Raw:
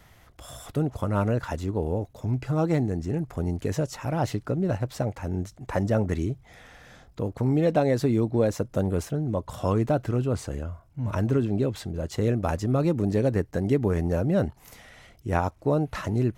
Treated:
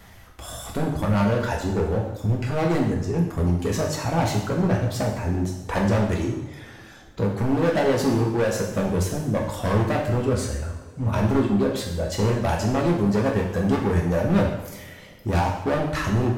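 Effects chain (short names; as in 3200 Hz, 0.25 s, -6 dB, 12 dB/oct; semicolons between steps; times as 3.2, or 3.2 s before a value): reverb removal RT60 2 s; hard clip -25.5 dBFS, distortion -9 dB; two-slope reverb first 0.8 s, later 3.1 s, from -20 dB, DRR -1.5 dB; gain +5 dB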